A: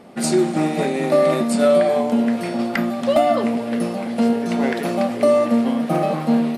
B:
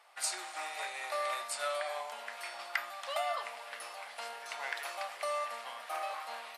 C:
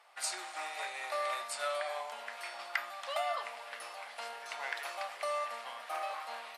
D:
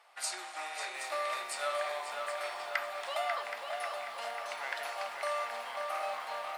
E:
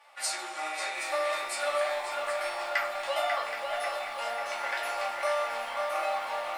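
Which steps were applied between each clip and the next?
high-pass filter 900 Hz 24 dB per octave; level −8.5 dB
high-shelf EQ 7,900 Hz −4.5 dB
feedback echo with a low-pass in the loop 542 ms, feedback 66%, low-pass 4,400 Hz, level −5 dB; feedback echo at a low word length 773 ms, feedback 35%, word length 9 bits, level −10 dB
rectangular room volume 140 cubic metres, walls furnished, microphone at 2.4 metres

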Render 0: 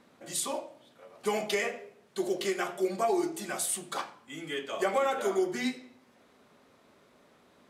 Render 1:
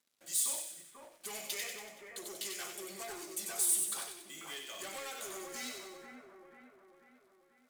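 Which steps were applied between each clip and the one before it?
leveller curve on the samples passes 3
first-order pre-emphasis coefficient 0.9
echo with a time of its own for lows and highs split 1,900 Hz, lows 490 ms, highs 94 ms, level −4.5 dB
level −8 dB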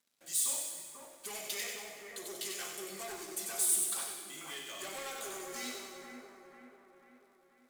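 dense smooth reverb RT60 2.2 s, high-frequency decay 0.75×, DRR 5 dB

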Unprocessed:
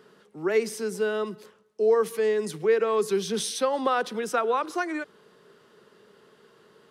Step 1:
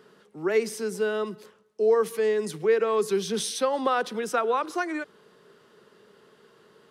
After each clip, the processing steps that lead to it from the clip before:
no processing that can be heard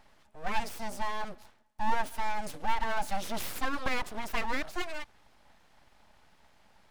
full-wave rectification
level −3.5 dB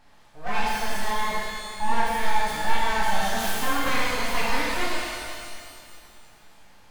reverb with rising layers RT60 2.2 s, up +12 semitones, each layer −8 dB, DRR −7 dB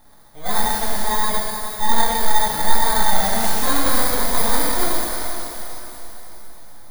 samples in bit-reversed order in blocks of 16 samples
feedback delay with all-pass diffusion 494 ms, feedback 42%, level −11.5 dB
level +5.5 dB

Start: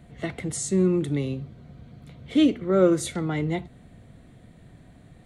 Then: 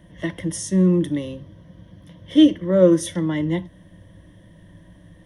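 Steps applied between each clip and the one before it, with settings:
EQ curve with evenly spaced ripples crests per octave 1.2, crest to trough 15 dB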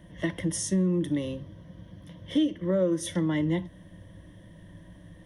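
downward compressor 5 to 1, threshold −21 dBFS, peak gain reduction 12 dB
level −1.5 dB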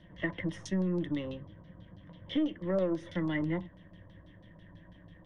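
gain on one half-wave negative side −3 dB
auto-filter low-pass saw down 6.1 Hz 860–4,700 Hz
level −4.5 dB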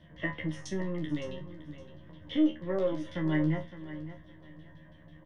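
tuned comb filter 77 Hz, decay 0.22 s, harmonics all, mix 100%
repeating echo 563 ms, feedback 24%, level −13.5 dB
level +8 dB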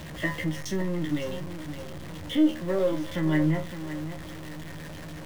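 converter with a step at zero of −39.5 dBFS
level +3.5 dB

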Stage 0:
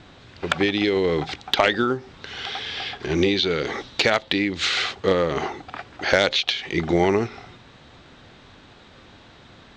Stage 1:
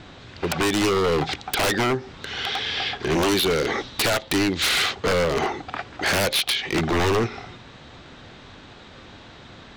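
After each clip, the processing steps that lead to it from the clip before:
wave folding −19.5 dBFS
level +4 dB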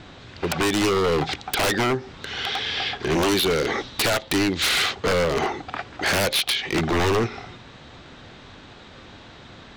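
no processing that can be heard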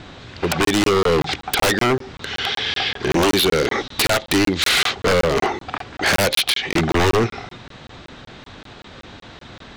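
regular buffer underruns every 0.19 s, samples 1,024, zero, from 0:00.65
level +4.5 dB

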